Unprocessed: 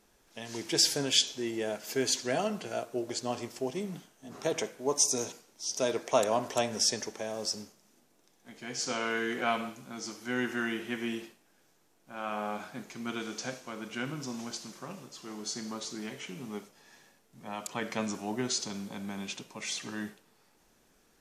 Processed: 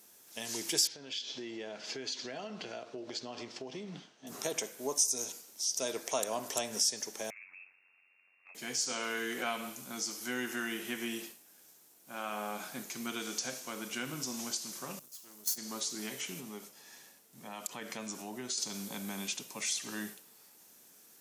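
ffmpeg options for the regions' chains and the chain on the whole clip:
ffmpeg -i in.wav -filter_complex "[0:a]asettb=1/sr,asplit=3[link_01][link_02][link_03];[link_01]atrim=end=0.874[link_04];[link_02]atrim=start=0.87:end=4.27,asetpts=PTS-STARTPTS,afade=type=in:duration=0.004:curve=qsin,afade=type=out:start_time=3.396:duration=0.004:curve=qsin,lowpass=frequency=4700:width=0.5412,lowpass=frequency=4700:width=1.3066,acompressor=threshold=-38dB:ratio=5:attack=3.2:release=140:knee=1:detection=peak[link_05];[link_03]atrim=start=4.266[link_06];[link_04][link_05]acrossfade=duration=0.004:curve1=hsin:curve2=qsin[link_07];[link_07][link_06]acrossfade=duration=0.004:curve1=qsin:curve2=hsin,asettb=1/sr,asplit=3[link_08][link_09][link_10];[link_08]atrim=end=7.304[link_11];[link_09]atrim=start=7.3:end=8.55,asetpts=PTS-STARTPTS,afade=type=in:duration=0.004:curve=qsin,afade=type=out:start_time=1.246:duration=0.004:curve=qsin,aeval=exprs='val(0)*sin(2*PI*46*n/s)':channel_layout=same,lowpass=frequency=2400:width_type=q:width=0.5098,lowpass=frequency=2400:width_type=q:width=0.6013,lowpass=frequency=2400:width_type=q:width=0.9,lowpass=frequency=2400:width_type=q:width=2.563,afreqshift=-2800,acompressor=threshold=-55dB:ratio=2.5:attack=3.2:release=140:knee=1:detection=peak[link_12];[link_10]atrim=start=8.546[link_13];[link_11][link_12]acrossfade=duration=0.004:curve1=hsin:curve2=qsin[link_14];[link_14][link_13]acrossfade=duration=0.004:curve1=qsin:curve2=hsin,asettb=1/sr,asplit=3[link_15][link_16][link_17];[link_15]atrim=end=14.994[link_18];[link_16]atrim=start=14.99:end=15.58,asetpts=PTS-STARTPTS,afade=type=in:duration=0.004:curve=qsin,afade=type=out:start_time=0.586:duration=0.004:curve=qsin,aeval=exprs='if(lt(val(0),0),0.251*val(0),val(0))':channel_layout=same,highshelf=frequency=7700:gain=12,agate=range=-13dB:threshold=-39dB:ratio=16:release=100:detection=peak[link_19];[link_17]atrim=start=15.576[link_20];[link_18][link_19]acrossfade=duration=0.004:curve1=hsin:curve2=qsin[link_21];[link_21][link_20]acrossfade=duration=0.004:curve1=qsin:curve2=hsin,asettb=1/sr,asplit=3[link_22][link_23][link_24];[link_22]atrim=end=16.404[link_25];[link_23]atrim=start=16.4:end=18.58,asetpts=PTS-STARTPTS,afade=type=in:duration=0.004:curve=qsin,afade=type=out:start_time=2.176:duration=0.004:curve=qsin,highshelf=frequency=5700:gain=-4.5,acompressor=threshold=-43dB:ratio=2:attack=3.2:release=140:knee=1:detection=peak[link_26];[link_24]atrim=start=18.576[link_27];[link_25][link_26]acrossfade=duration=0.004:curve1=hsin:curve2=qsin[link_28];[link_28][link_27]acrossfade=duration=0.004:curve1=qsin:curve2=hsin,highpass=140,aemphasis=mode=production:type=75fm,acompressor=threshold=-36dB:ratio=2" out.wav

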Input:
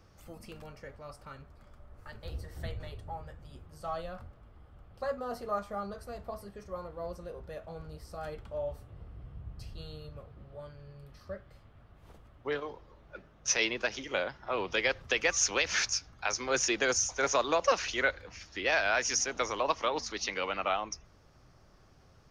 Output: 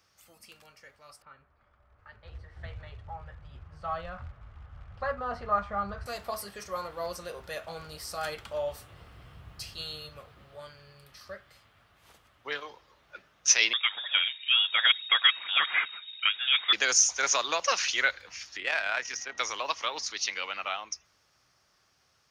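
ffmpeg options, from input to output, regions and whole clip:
ffmpeg -i in.wav -filter_complex "[0:a]asettb=1/sr,asplit=3[link_01][link_02][link_03];[link_01]atrim=end=1.224[link_04];[link_02]atrim=start=1.22:end=6.06,asetpts=PTS-STARTPTS,afade=type=in:duration=0.004:curve=qsin,afade=type=out:start_time=4.836:duration=0.004:curve=qsin,asubboost=boost=9.5:cutoff=110,acrusher=bits=9:mode=log:mix=0:aa=0.000001,lowpass=1700[link_05];[link_03]atrim=start=6.056[link_06];[link_04][link_05]acrossfade=duration=0.004:curve1=hsin:curve2=qsin[link_07];[link_07][link_06]acrossfade=duration=0.004:curve1=qsin:curve2=hsin,asettb=1/sr,asplit=3[link_08][link_09][link_10];[link_08]atrim=end=13.734[link_11];[link_09]atrim=start=13.73:end=16.73,asetpts=PTS-STARTPTS,afade=type=in:duration=0.004:curve=qsin,afade=type=out:start_time=2.996:duration=0.004:curve=qsin,aphaser=in_gain=1:out_gain=1:delay=2.4:decay=0.36:speed=1.7:type=triangular,lowpass=frequency=3200:width_type=q:width=0.5098,lowpass=frequency=3200:width_type=q:width=0.6013,lowpass=frequency=3200:width_type=q:width=0.9,lowpass=frequency=3200:width_type=q:width=2.563,afreqshift=-3800[link_12];[link_10]atrim=start=16.726[link_13];[link_11][link_12]acrossfade=duration=0.004:curve1=hsin:curve2=qsin[link_14];[link_14][link_13]acrossfade=duration=0.004:curve1=qsin:curve2=hsin,asettb=1/sr,asplit=3[link_15][link_16][link_17];[link_15]atrim=end=18.574[link_18];[link_16]atrim=start=18.57:end=19.38,asetpts=PTS-STARTPTS,afade=type=in:duration=0.004:curve=qsin,afade=type=out:start_time=0.806:duration=0.004:curve=qsin,tremolo=f=37:d=0.4,aeval=exprs='val(0)+0.00251*sin(2*PI*1900*n/s)':channel_layout=same,adynamicsmooth=sensitivity=0.5:basefreq=2800[link_19];[link_17]atrim=start=19.376[link_20];[link_18][link_19]acrossfade=duration=0.004:curve1=hsin:curve2=qsin[link_21];[link_21][link_20]acrossfade=duration=0.004:curve1=qsin:curve2=hsin,highpass=59,tiltshelf=frequency=910:gain=-10,dynaudnorm=framelen=780:gausssize=9:maxgain=14.5dB,volume=-7dB" out.wav

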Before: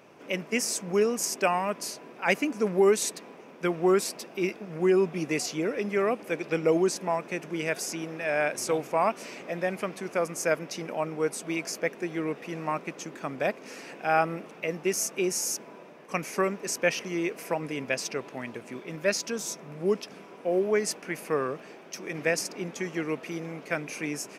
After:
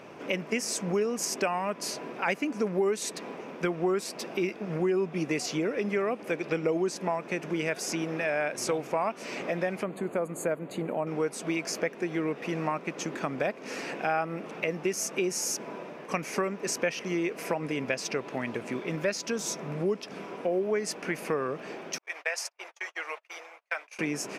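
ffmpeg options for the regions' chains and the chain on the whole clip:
ffmpeg -i in.wav -filter_complex "[0:a]asettb=1/sr,asplit=3[link_01][link_02][link_03];[link_01]atrim=end=9.834[link_04];[link_02]atrim=start=9.83:end=11.07,asetpts=PTS-STARTPTS,afade=type=in:duration=0.004:curve=qsin,afade=type=out:start_time=1.236:duration=0.004:curve=qsin,asuperstop=centerf=5500:order=8:qfactor=2.8,equalizer=frequency=3000:width=0.43:gain=-10[link_05];[link_03]atrim=start=11.066[link_06];[link_04][link_05]acrossfade=duration=0.004:curve1=hsin:curve2=qsin[link_07];[link_07][link_06]acrossfade=duration=0.004:curve1=qsin:curve2=hsin,asettb=1/sr,asplit=3[link_08][link_09][link_10];[link_08]atrim=end=21.984[link_11];[link_09]atrim=start=21.98:end=23.99,asetpts=PTS-STARTPTS,afade=type=in:duration=0.004:curve=qsin,afade=type=out:start_time=2.006:duration=0.004:curve=qsin,agate=range=-40dB:threshold=-37dB:ratio=16:release=100:detection=peak,highpass=frequency=700:width=0.5412,highpass=frequency=700:width=1.3066,flanger=delay=1:depth=3.8:regen=-59:speed=1.8:shape=triangular[link_12];[link_10]atrim=start=23.986[link_13];[link_11][link_12]acrossfade=duration=0.004:curve1=hsin:curve2=qsin[link_14];[link_14][link_13]acrossfade=duration=0.004:curve1=qsin:curve2=hsin,highshelf=frequency=7800:gain=-9,acompressor=threshold=-36dB:ratio=3,volume=7.5dB" out.wav

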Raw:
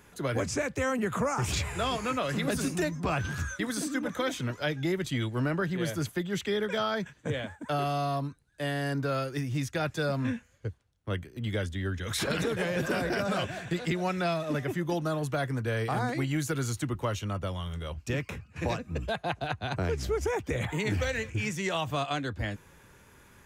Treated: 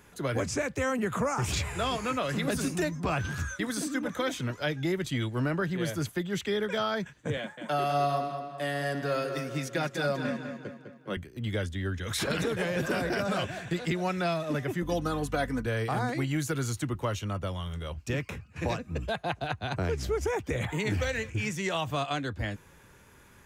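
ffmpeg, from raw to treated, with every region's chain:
ffmpeg -i in.wav -filter_complex "[0:a]asettb=1/sr,asplit=3[link_01][link_02][link_03];[link_01]atrim=end=7.374[link_04];[link_02]atrim=start=7.37:end=11.17,asetpts=PTS-STARTPTS,afade=type=in:duration=0.004:curve=qsin,afade=type=out:start_time=3.796:duration=0.004:curve=qsin,highpass=frequency=160:width=0.5412,highpass=frequency=160:width=1.3066,aecho=1:1:5.5:0.37,atrim=end_sample=167580,asplit=2[link_05][link_06];[link_06]adelay=203,lowpass=frequency=4600:poles=1,volume=-7dB,asplit=2[link_07][link_08];[link_08]adelay=203,lowpass=frequency=4600:poles=1,volume=0.49,asplit=2[link_09][link_10];[link_10]adelay=203,lowpass=frequency=4600:poles=1,volume=0.49,asplit=2[link_11][link_12];[link_12]adelay=203,lowpass=frequency=4600:poles=1,volume=0.49,asplit=2[link_13][link_14];[link_14]adelay=203,lowpass=frequency=4600:poles=1,volume=0.49,asplit=2[link_15][link_16];[link_16]adelay=203,lowpass=frequency=4600:poles=1,volume=0.49[link_17];[link_05][link_07][link_09][link_11][link_13][link_15][link_17]amix=inputs=7:normalize=0,atrim=end_sample=167580[link_18];[link_03]atrim=start=11.166[link_19];[link_04][link_18]acrossfade=duration=0.004:curve1=hsin:curve2=qsin[link_20];[link_20][link_19]acrossfade=duration=0.004:curve1=qsin:curve2=hsin,asettb=1/sr,asplit=3[link_21][link_22][link_23];[link_21]atrim=end=14.824[link_24];[link_22]atrim=start=14.82:end=15.66,asetpts=PTS-STARTPTS,afade=type=in:duration=0.004:curve=qsin,afade=type=out:start_time=0.836:duration=0.004:curve=qsin,aecho=1:1:4:0.67,atrim=end_sample=37044,aeval=exprs='val(0)+0.0112*(sin(2*PI*50*n/s)+sin(2*PI*2*50*n/s)/2+sin(2*PI*3*50*n/s)/3+sin(2*PI*4*50*n/s)/4+sin(2*PI*5*50*n/s)/5)':channel_layout=same[link_25];[link_23]atrim=start=15.656[link_26];[link_24][link_25]acrossfade=duration=0.004:curve1=hsin:curve2=qsin[link_27];[link_27][link_26]acrossfade=duration=0.004:curve1=qsin:curve2=hsin" out.wav

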